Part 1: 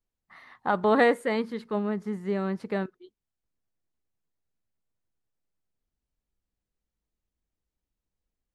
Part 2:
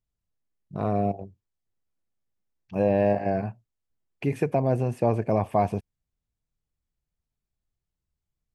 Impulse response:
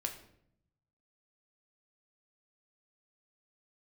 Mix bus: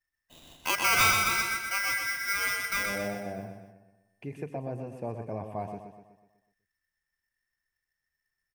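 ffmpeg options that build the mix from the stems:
-filter_complex "[0:a]asoftclip=type=tanh:threshold=-13dB,aeval=exprs='val(0)*sgn(sin(2*PI*1800*n/s))':channel_layout=same,volume=-2.5dB,asplit=3[link_01][link_02][link_03];[link_02]volume=-3.5dB[link_04];[1:a]volume=-13dB,asplit=2[link_05][link_06];[link_06]volume=-7.5dB[link_07];[link_03]apad=whole_len=376740[link_08];[link_05][link_08]sidechaincompress=threshold=-37dB:ratio=8:attack=16:release=256[link_09];[link_04][link_07]amix=inputs=2:normalize=0,aecho=0:1:124|248|372|496|620|744|868:1|0.49|0.24|0.118|0.0576|0.0282|0.0138[link_10];[link_01][link_09][link_10]amix=inputs=3:normalize=0,equalizer=frequency=4200:width=7.5:gain=-3"

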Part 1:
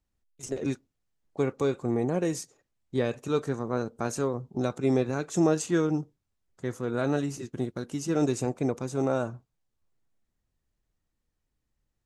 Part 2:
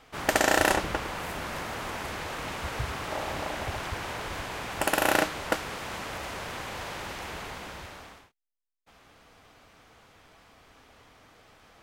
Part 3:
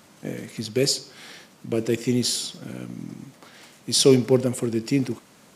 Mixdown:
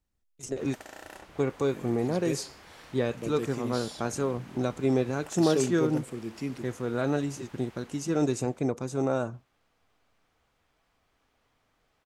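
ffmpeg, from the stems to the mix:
ffmpeg -i stem1.wav -i stem2.wav -i stem3.wav -filter_complex "[0:a]volume=-0.5dB[link_01];[1:a]acompressor=threshold=-30dB:ratio=2,adelay=450,volume=-16.5dB[link_02];[2:a]acrossover=split=4300[link_03][link_04];[link_04]acompressor=threshold=-32dB:ratio=4:attack=1:release=60[link_05];[link_03][link_05]amix=inputs=2:normalize=0,adelay=1500,volume=-12dB[link_06];[link_01][link_02][link_06]amix=inputs=3:normalize=0" out.wav

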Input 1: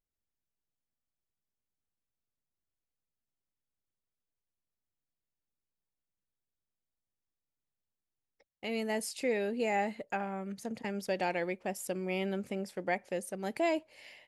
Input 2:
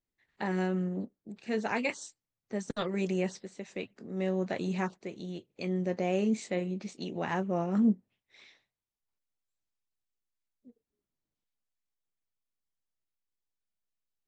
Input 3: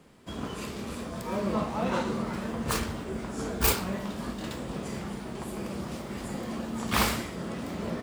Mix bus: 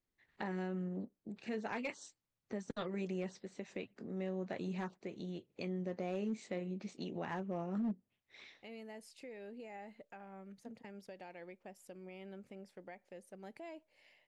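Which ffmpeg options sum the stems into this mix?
ffmpeg -i stem1.wav -i stem2.wav -filter_complex "[0:a]alimiter=level_in=3.5dB:limit=-24dB:level=0:latency=1:release=239,volume=-3.5dB,volume=-12.5dB[link_01];[1:a]asoftclip=type=hard:threshold=-21.5dB,volume=1.5dB[link_02];[link_01][link_02]amix=inputs=2:normalize=0,highshelf=frequency=6300:gain=-9.5,acompressor=threshold=-45dB:ratio=2,volume=0dB" out.wav

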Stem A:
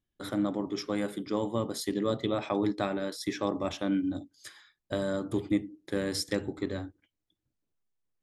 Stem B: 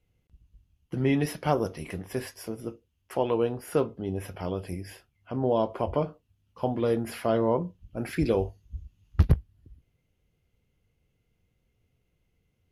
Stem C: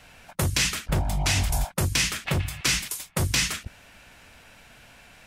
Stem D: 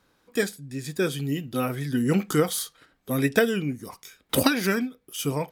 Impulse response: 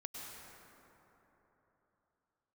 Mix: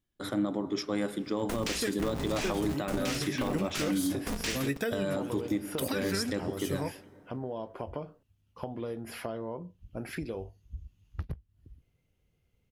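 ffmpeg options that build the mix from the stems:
-filter_complex "[0:a]volume=1dB,asplit=2[link_01][link_02];[link_02]volume=-16.5dB[link_03];[1:a]acompressor=threshold=-33dB:ratio=6,adelay=2000,volume=-1dB[link_04];[2:a]highshelf=frequency=8400:gain=-8.5,aeval=exprs='val(0)*sgn(sin(2*PI*120*n/s))':channel_layout=same,adelay=1100,volume=-9.5dB[link_05];[3:a]adelay=1450,volume=-8dB,asplit=2[link_06][link_07];[link_07]volume=-18.5dB[link_08];[4:a]atrim=start_sample=2205[link_09];[link_03][link_08]amix=inputs=2:normalize=0[link_10];[link_10][link_09]afir=irnorm=-1:irlink=0[link_11];[link_01][link_04][link_05][link_06][link_11]amix=inputs=5:normalize=0,alimiter=limit=-20.5dB:level=0:latency=1:release=103"

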